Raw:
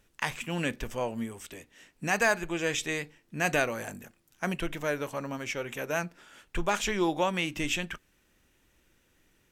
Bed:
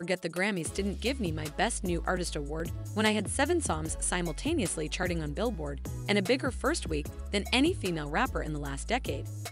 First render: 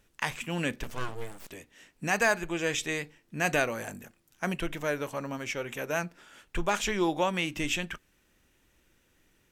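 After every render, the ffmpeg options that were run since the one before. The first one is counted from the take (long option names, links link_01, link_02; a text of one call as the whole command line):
ffmpeg -i in.wav -filter_complex "[0:a]asettb=1/sr,asplit=3[link_01][link_02][link_03];[link_01]atrim=end=0.834[link_04];[link_02]atrim=start=0.83:end=1.51,asetpts=PTS-STARTPTS,afade=type=in:duration=0.004:curve=qsin,afade=type=out:start_time=0.676:duration=0.004:curve=qsin,aeval=exprs='abs(val(0))':channel_layout=same[link_05];[link_03]atrim=start=1.506[link_06];[link_04][link_05]acrossfade=duration=0.004:curve1=hsin:curve2=qsin[link_07];[link_07][link_06]acrossfade=duration=0.004:curve1=qsin:curve2=hsin" out.wav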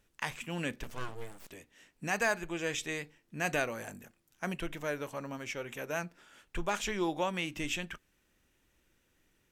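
ffmpeg -i in.wav -af "volume=-5dB" out.wav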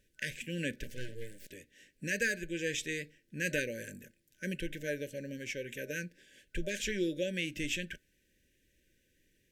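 ffmpeg -i in.wav -af "afftfilt=real='re*(1-between(b*sr/4096,610,1500))':imag='im*(1-between(b*sr/4096,610,1500))':win_size=4096:overlap=0.75" out.wav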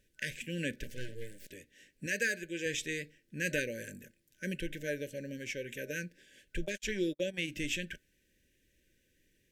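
ffmpeg -i in.wav -filter_complex "[0:a]asettb=1/sr,asplit=3[link_01][link_02][link_03];[link_01]atrim=end=2.064[link_04];[link_02]atrim=start=2.06:end=2.66,asetpts=PTS-STARTPTS,afade=type=in:duration=0.004:curve=qsin,afade=type=out:start_time=0.596:duration=0.004:curve=qsin,highpass=frequency=230:poles=1[link_05];[link_03]atrim=start=2.656[link_06];[link_04][link_05]acrossfade=duration=0.004:curve1=hsin:curve2=qsin[link_07];[link_07][link_06]acrossfade=duration=0.004:curve1=qsin:curve2=hsin,asplit=3[link_08][link_09][link_10];[link_08]afade=type=out:start_time=6.57:duration=0.02[link_11];[link_09]agate=range=-46dB:threshold=-37dB:ratio=16:release=100:detection=peak,afade=type=in:start_time=6.57:duration=0.02,afade=type=out:start_time=7.47:duration=0.02[link_12];[link_10]afade=type=in:start_time=7.47:duration=0.02[link_13];[link_11][link_12][link_13]amix=inputs=3:normalize=0" out.wav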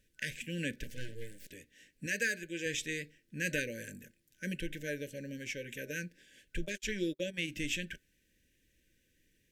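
ffmpeg -i in.wav -af "equalizer=frequency=760:width_type=o:width=0.57:gain=-11,bandreject=frequency=380:width=12" out.wav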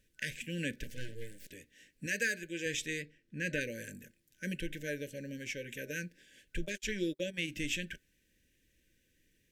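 ffmpeg -i in.wav -filter_complex "[0:a]asplit=3[link_01][link_02][link_03];[link_01]afade=type=out:start_time=3.01:duration=0.02[link_04];[link_02]lowpass=frequency=3000:poles=1,afade=type=in:start_time=3.01:duration=0.02,afade=type=out:start_time=3.6:duration=0.02[link_05];[link_03]afade=type=in:start_time=3.6:duration=0.02[link_06];[link_04][link_05][link_06]amix=inputs=3:normalize=0" out.wav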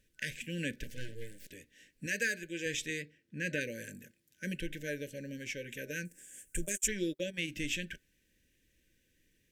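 ffmpeg -i in.wav -filter_complex "[0:a]asettb=1/sr,asplit=3[link_01][link_02][link_03];[link_01]atrim=end=2.904[link_04];[link_02]atrim=start=2.9:end=4.44,asetpts=PTS-STARTPTS,afade=type=in:duration=0.004:curve=qsin,afade=type=out:start_time=1.536:duration=0.004:curve=qsin,highpass=73[link_05];[link_03]atrim=start=4.436[link_06];[link_04][link_05]acrossfade=duration=0.004:curve1=hsin:curve2=qsin[link_07];[link_07][link_06]acrossfade=duration=0.004:curve1=qsin:curve2=hsin,asettb=1/sr,asplit=3[link_08][link_09][link_10];[link_08]atrim=end=6.054[link_11];[link_09]atrim=start=6.05:end=6.88,asetpts=PTS-STARTPTS,afade=type=in:duration=0.004:curve=qsin,afade=type=out:start_time=0.826:duration=0.004:curve=qsin,highshelf=frequency=5900:width_type=q:width=3:gain=13.5[link_12];[link_10]atrim=start=6.876[link_13];[link_11][link_12]acrossfade=duration=0.004:curve1=hsin:curve2=qsin[link_14];[link_14][link_13]acrossfade=duration=0.004:curve1=qsin:curve2=hsin" out.wav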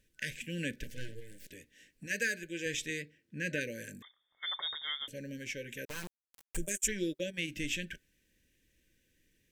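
ffmpeg -i in.wav -filter_complex "[0:a]asplit=3[link_01][link_02][link_03];[link_01]afade=type=out:start_time=1.19:duration=0.02[link_04];[link_02]acompressor=threshold=-42dB:ratio=6:attack=3.2:release=140:knee=1:detection=peak,afade=type=in:start_time=1.19:duration=0.02,afade=type=out:start_time=2.09:duration=0.02[link_05];[link_03]afade=type=in:start_time=2.09:duration=0.02[link_06];[link_04][link_05][link_06]amix=inputs=3:normalize=0,asettb=1/sr,asplit=3[link_07][link_08][link_09];[link_07]atrim=end=4.024[link_10];[link_08]atrim=start=4.02:end=5.08,asetpts=PTS-STARTPTS,afade=type=in:duration=0.004:curve=qsin,afade=type=out:start_time=1.056:duration=0.004:curve=qsin,lowpass=frequency=3100:width_type=q:width=0.5098,lowpass=frequency=3100:width_type=q:width=0.6013,lowpass=frequency=3100:width_type=q:width=0.9,lowpass=frequency=3100:width_type=q:width=2.563,afreqshift=-3700[link_11];[link_09]atrim=start=5.076[link_12];[link_10][link_11]acrossfade=duration=0.004:curve1=hsin:curve2=qsin[link_13];[link_13][link_12]acrossfade=duration=0.004:curve1=qsin:curve2=hsin,asettb=1/sr,asplit=3[link_14][link_15][link_16];[link_14]atrim=end=5.854[link_17];[link_15]atrim=start=5.85:end=6.57,asetpts=PTS-STARTPTS,afade=type=in:duration=0.004:curve=qsin,afade=type=out:start_time=0.716:duration=0.004:curve=qsin,acrusher=bits=4:dc=4:mix=0:aa=0.000001[link_18];[link_16]atrim=start=6.566[link_19];[link_17][link_18]acrossfade=duration=0.004:curve1=hsin:curve2=qsin[link_20];[link_20][link_19]acrossfade=duration=0.004:curve1=qsin:curve2=hsin" out.wav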